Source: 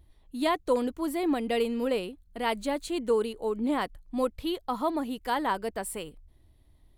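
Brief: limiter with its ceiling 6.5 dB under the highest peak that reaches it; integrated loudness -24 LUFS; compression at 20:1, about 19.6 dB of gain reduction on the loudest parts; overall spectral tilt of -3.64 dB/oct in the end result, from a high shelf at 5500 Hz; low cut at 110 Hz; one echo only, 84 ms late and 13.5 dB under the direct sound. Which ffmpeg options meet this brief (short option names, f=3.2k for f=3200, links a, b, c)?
-af "highpass=110,highshelf=f=5.5k:g=3.5,acompressor=threshold=-40dB:ratio=20,alimiter=level_in=12.5dB:limit=-24dB:level=0:latency=1,volume=-12.5dB,aecho=1:1:84:0.211,volume=22dB"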